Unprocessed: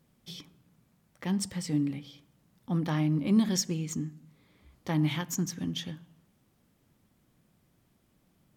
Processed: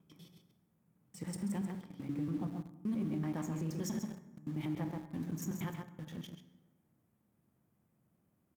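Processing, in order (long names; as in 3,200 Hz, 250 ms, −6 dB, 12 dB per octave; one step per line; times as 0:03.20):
slices reordered back to front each 95 ms, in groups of 6
high-pass filter 70 Hz 12 dB per octave
parametric band 4,300 Hz −13.5 dB 1.6 octaves
slap from a distant wall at 23 metres, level −7 dB
on a send at −9 dB: convolution reverb RT60 1.4 s, pre-delay 8 ms
on the sum: brickwall limiter −24.5 dBFS, peak gain reduction 11 dB
hum removal 141.2 Hz, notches 15
in parallel at −7 dB: centre clipping without the shift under −38 dBFS
on the sum: level −8 dB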